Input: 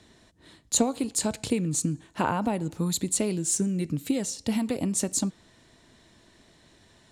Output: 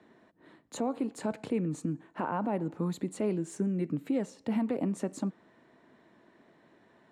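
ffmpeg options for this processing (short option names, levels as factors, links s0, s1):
-filter_complex "[0:a]acrossover=split=160 2100:gain=0.0631 1 0.0794[s0][s1][s2];[s0][s1][s2]amix=inputs=3:normalize=0,alimiter=limit=0.0891:level=0:latency=1:release=41"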